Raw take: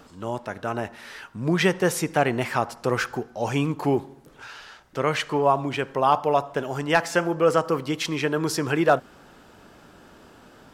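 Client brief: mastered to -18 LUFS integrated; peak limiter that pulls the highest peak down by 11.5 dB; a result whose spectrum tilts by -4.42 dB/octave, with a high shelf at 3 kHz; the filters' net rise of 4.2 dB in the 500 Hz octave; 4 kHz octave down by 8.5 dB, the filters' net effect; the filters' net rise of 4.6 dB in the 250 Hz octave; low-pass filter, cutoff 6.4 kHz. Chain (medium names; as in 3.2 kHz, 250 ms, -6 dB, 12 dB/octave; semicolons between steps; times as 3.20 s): low-pass 6.4 kHz; peaking EQ 250 Hz +5 dB; peaking EQ 500 Hz +4 dB; treble shelf 3 kHz -5 dB; peaking EQ 4 kHz -8 dB; trim +9 dB; peak limiter -6.5 dBFS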